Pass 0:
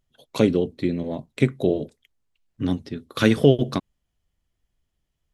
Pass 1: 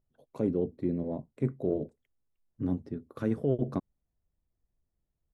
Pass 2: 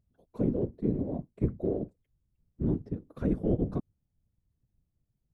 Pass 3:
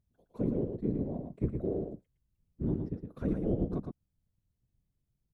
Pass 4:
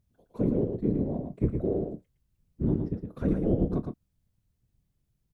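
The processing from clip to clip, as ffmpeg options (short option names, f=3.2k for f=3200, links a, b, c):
-af "firequalizer=gain_entry='entry(480,0);entry(3200,-22);entry(7600,-14)':delay=0.05:min_phase=1,areverse,acompressor=threshold=-19dB:ratio=6,areverse,volume=-5dB"
-af "lowshelf=f=340:g=11.5,afftfilt=real='hypot(re,im)*cos(2*PI*random(0))':imag='hypot(re,im)*sin(2*PI*random(1))':win_size=512:overlap=0.75"
-af "aecho=1:1:113:0.531,volume=-3.5dB"
-filter_complex "[0:a]asplit=2[a][b];[b]adelay=27,volume=-14dB[c];[a][c]amix=inputs=2:normalize=0,volume=5dB"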